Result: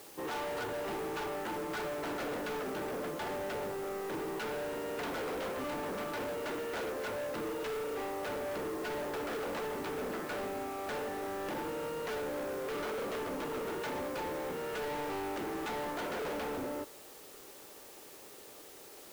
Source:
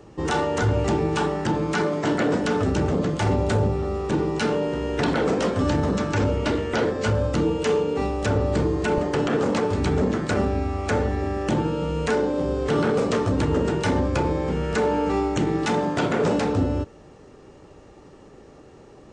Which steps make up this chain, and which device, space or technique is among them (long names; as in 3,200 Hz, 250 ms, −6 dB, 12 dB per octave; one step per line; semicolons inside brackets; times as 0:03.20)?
aircraft radio (band-pass filter 400–2,500 Hz; hard clipping −30.5 dBFS, distortion −6 dB; white noise bed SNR 16 dB)
level −5 dB